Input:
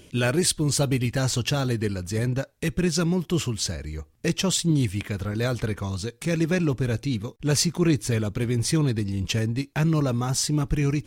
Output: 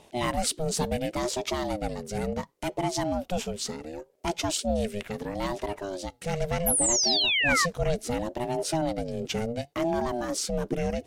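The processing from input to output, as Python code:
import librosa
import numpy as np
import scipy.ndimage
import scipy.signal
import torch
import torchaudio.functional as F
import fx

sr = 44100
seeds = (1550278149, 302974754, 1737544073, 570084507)

y = fx.spec_paint(x, sr, seeds[0], shape='fall', start_s=6.66, length_s=1.0, low_hz=1400.0, high_hz=12000.0, level_db=-19.0)
y = fx.ring_lfo(y, sr, carrier_hz=410.0, swing_pct=25, hz=0.7)
y = F.gain(torch.from_numpy(y), -2.5).numpy()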